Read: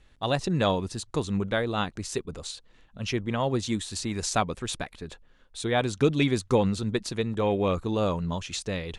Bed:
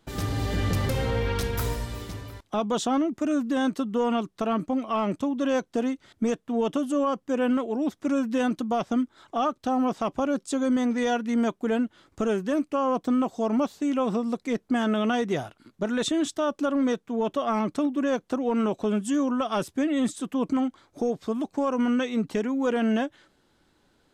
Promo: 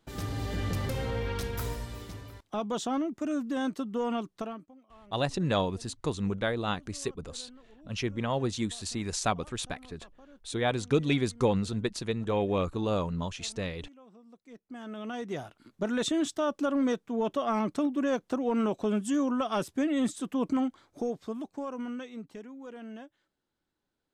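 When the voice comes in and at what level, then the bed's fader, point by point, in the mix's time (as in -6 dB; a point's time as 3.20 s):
4.90 s, -3.0 dB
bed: 4.40 s -6 dB
4.75 s -29.5 dB
14.15 s -29.5 dB
15.64 s -3 dB
20.76 s -3 dB
22.64 s -19.5 dB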